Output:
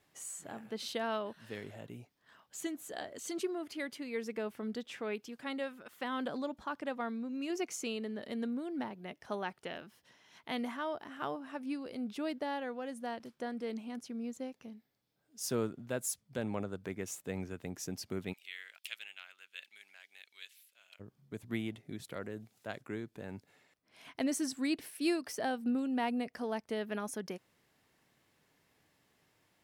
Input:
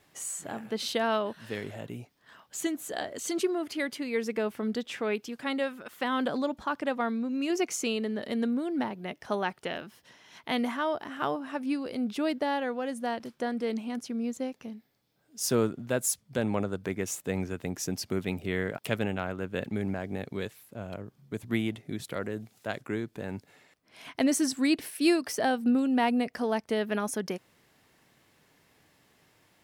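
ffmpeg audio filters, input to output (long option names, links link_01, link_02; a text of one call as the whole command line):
ffmpeg -i in.wav -filter_complex "[0:a]asplit=3[link_01][link_02][link_03];[link_01]afade=type=out:start_time=18.32:duration=0.02[link_04];[link_02]highpass=frequency=2800:width_type=q:width=1.6,afade=type=in:start_time=18.32:duration=0.02,afade=type=out:start_time=20.99:duration=0.02[link_05];[link_03]afade=type=in:start_time=20.99:duration=0.02[link_06];[link_04][link_05][link_06]amix=inputs=3:normalize=0,volume=-8dB" out.wav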